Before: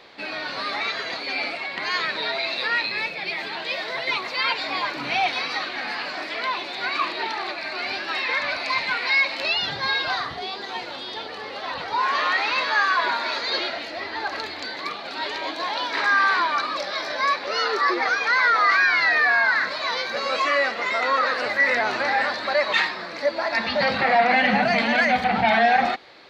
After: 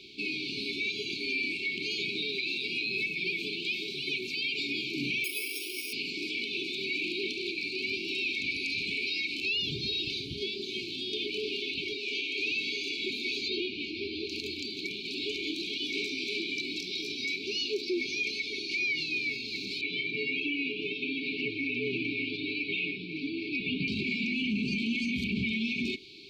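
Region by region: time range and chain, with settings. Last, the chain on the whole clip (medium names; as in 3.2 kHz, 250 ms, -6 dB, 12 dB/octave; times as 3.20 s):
5.24–5.93 s: high-pass 300 Hz + static phaser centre 480 Hz, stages 4 + careless resampling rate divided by 6×, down filtered, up hold
11.13–12.38 s: tone controls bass -13 dB, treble -6 dB + level flattener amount 50%
13.48–14.29 s: low-pass 3.5 kHz + peaking EQ 720 Hz +10 dB 0.94 oct
19.81–23.88 s: low-pass 2.9 kHz 24 dB/octave + comb 6.8 ms, depth 92%
whole clip: FFT band-reject 440–2200 Hz; dynamic bell 4.6 kHz, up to -7 dB, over -40 dBFS, Q 1.2; peak limiter -25 dBFS; trim +2 dB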